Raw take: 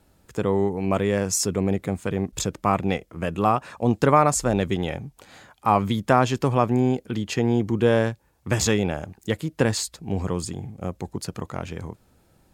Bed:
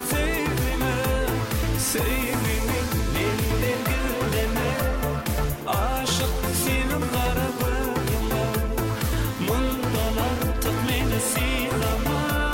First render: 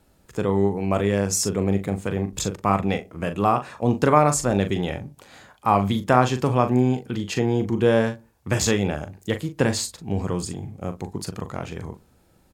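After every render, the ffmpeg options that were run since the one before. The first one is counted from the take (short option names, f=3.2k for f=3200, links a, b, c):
-filter_complex "[0:a]asplit=2[a][b];[b]adelay=40,volume=-9dB[c];[a][c]amix=inputs=2:normalize=0,asplit=2[d][e];[e]adelay=61,lowpass=f=920:p=1,volume=-18dB,asplit=2[f][g];[g]adelay=61,lowpass=f=920:p=1,volume=0.4,asplit=2[h][i];[i]adelay=61,lowpass=f=920:p=1,volume=0.4[j];[d][f][h][j]amix=inputs=4:normalize=0"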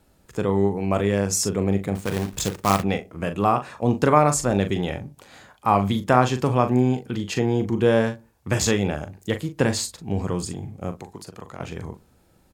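-filter_complex "[0:a]asettb=1/sr,asplit=3[a][b][c];[a]atrim=end=1.954[d];[b]atrim=start=1.95:end=2.83,asetpts=PTS-STARTPTS,afade=t=in:d=0.004:c=qsin,afade=t=out:st=0.876:d=0.004:c=qsin,acrusher=bits=2:mode=log:mix=0:aa=0.000001[e];[c]atrim=start=2.826[f];[d][e]acrossfade=d=0.004:c1=hsin:c2=qsin[g];[g][f]acrossfade=d=0.004:c1=qsin:c2=hsin,asettb=1/sr,asplit=3[h][i][j];[h]atrim=end=10.944[k];[i]atrim=start=10.94:end=11.6,asetpts=PTS-STARTPTS,afade=t=in:d=0.004:c=qsin,afade=t=out:st=0.656:d=0.004:c=qsin,acrossover=split=350|900[l][m][n];[l]acompressor=threshold=-42dB:ratio=4[o];[m]acompressor=threshold=-41dB:ratio=4[p];[n]acompressor=threshold=-42dB:ratio=4[q];[o][p][q]amix=inputs=3:normalize=0[r];[j]atrim=start=11.596[s];[k][r]acrossfade=d=0.004:c1=hsin:c2=qsin[t];[t][s]acrossfade=d=0.004:c1=qsin:c2=hsin"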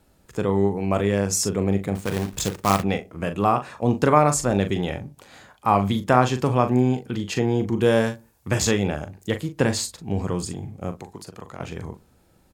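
-filter_complex "[0:a]asettb=1/sr,asplit=3[a][b][c];[a]atrim=end=7.814[d];[b]atrim=start=7.81:end=8.49,asetpts=PTS-STARTPTS,afade=t=in:d=0.004:c=qsin,afade=t=out:st=0.676:d=0.004:c=qsin,aemphasis=mode=production:type=cd[e];[c]atrim=start=8.486[f];[d][e]acrossfade=d=0.004:c1=hsin:c2=qsin[g];[g][f]acrossfade=d=0.004:c1=qsin:c2=hsin"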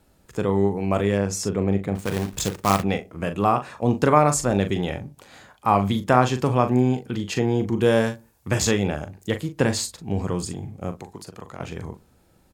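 -filter_complex "[0:a]asettb=1/sr,asplit=3[a][b][c];[a]atrim=end=1.174[d];[b]atrim=start=1.17:end=1.99,asetpts=PTS-STARTPTS,afade=t=in:d=0.004:c=qsin,afade=t=out:st=0.816:d=0.004:c=qsin,highshelf=f=5.4k:g=-10[e];[c]atrim=start=1.986[f];[d][e]acrossfade=d=0.004:c1=hsin:c2=qsin[g];[g][f]acrossfade=d=0.004:c1=qsin:c2=hsin"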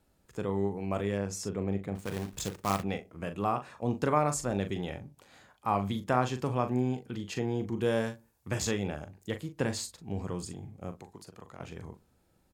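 -af "volume=-10dB"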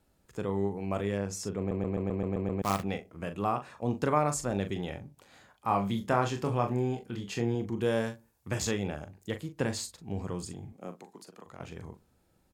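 -filter_complex "[0:a]asettb=1/sr,asplit=3[a][b][c];[a]atrim=end=5.674[d];[b]atrim=start=5.67:end=7.55,asetpts=PTS-STARTPTS,afade=t=in:d=0.004:c=qsin,afade=t=out:st=1.876:d=0.004:c=qsin,asplit=2[e][f];[f]adelay=26,volume=-6dB[g];[e][g]amix=inputs=2:normalize=0,atrim=end_sample=82908[h];[c]atrim=start=7.546[i];[d][h]acrossfade=d=0.004:c1=hsin:c2=qsin[j];[j][i]acrossfade=d=0.004:c1=qsin:c2=hsin,asettb=1/sr,asplit=3[k][l][m];[k]atrim=end=10.724[n];[l]atrim=start=10.72:end=11.46,asetpts=PTS-STARTPTS,afade=t=in:d=0.004:c=qsin,afade=t=out:st=0.736:d=0.004:c=qsin,highpass=f=180:w=0.5412,highpass=f=180:w=1.3066[o];[m]atrim=start=11.456[p];[n][o]acrossfade=d=0.004:c1=hsin:c2=qsin[q];[q][p]acrossfade=d=0.004:c1=qsin:c2=hsin,asplit=9[r][s][t][u][v][w][x][y][z];[r]atrim=end=1.712[aa];[s]atrim=start=1.578:end=1.712[ab];[t]atrim=start=1.578:end=1.712[ac];[u]atrim=start=1.578:end=1.712[ad];[v]atrim=start=1.578:end=1.712[ae];[w]atrim=start=1.578:end=1.712[af];[x]atrim=start=1.578:end=1.712[ag];[y]atrim=start=1.578:end=1.712[ah];[z]atrim=start=2.618[ai];[aa][ab]acrossfade=d=0.004:c1=hsin:c2=hsin[aj];[aj][ac]acrossfade=d=0.004:c1=hsin:c2=hsin[ak];[ak][ad]acrossfade=d=0.004:c1=hsin:c2=hsin[al];[al][ae]acrossfade=d=0.004:c1=hsin:c2=hsin[am];[am][af]acrossfade=d=0.004:c1=hsin:c2=hsin[an];[an][ag]acrossfade=d=0.004:c1=hsin:c2=hsin[ao];[ao][ah]acrossfade=d=0.004:c1=hsin:c2=hsin[ap];[ap][ai]acrossfade=d=0.004:c1=hsin:c2=hsin"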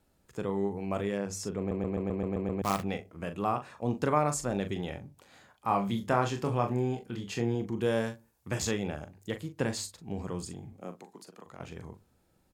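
-af "bandreject=f=50:t=h:w=6,bandreject=f=100:t=h:w=6"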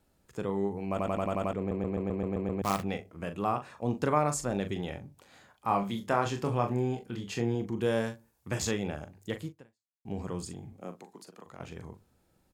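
-filter_complex "[0:a]asettb=1/sr,asplit=3[a][b][c];[a]atrim=end=5.834[d];[b]atrim=start=5.83:end=6.26,asetpts=PTS-STARTPTS,afade=t=in:d=0.004:c=qsin,afade=t=out:st=0.426:d=0.004:c=qsin,lowshelf=f=170:g=-8[e];[c]atrim=start=6.256[f];[d][e]acrossfade=d=0.004:c1=hsin:c2=qsin[g];[g][f]acrossfade=d=0.004:c1=qsin:c2=hsin,asplit=9[h][i][j][k][l][m][n][o][p];[h]atrim=end=0.992[q];[i]atrim=start=0.898:end=0.992[r];[j]atrim=start=0.898:end=0.992[s];[k]atrim=start=0.898:end=0.992[t];[l]atrim=start=0.898:end=0.992[u];[m]atrim=start=0.898:end=0.992[v];[n]atrim=start=0.898:end=0.992[w];[o]atrim=start=1.528:end=10.05,asetpts=PTS-STARTPTS,afade=t=out:st=7.962:d=0.56:c=exp[x];[p]atrim=start=10.05,asetpts=PTS-STARTPTS,afade=t=in:d=0.004:c=hsin[y];[q][r]acrossfade=d=0.004:c1=hsin:c2=hsin[z];[z][s]acrossfade=d=0.004:c1=hsin:c2=hsin[aa];[aa][t]acrossfade=d=0.004:c1=hsin:c2=hsin[ab];[ab][u]acrossfade=d=0.004:c1=hsin:c2=hsin[ac];[ac][v]acrossfade=d=0.004:c1=hsin:c2=hsin[ad];[ad][w]acrossfade=d=0.004:c1=hsin:c2=hsin[ae];[x][y]concat=n=2:v=0:a=1[af];[ae][af]acrossfade=d=0.004:c1=hsin:c2=hsin"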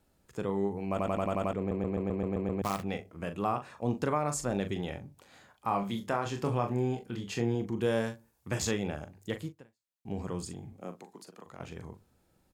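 -af "alimiter=limit=-17.5dB:level=0:latency=1:release=242"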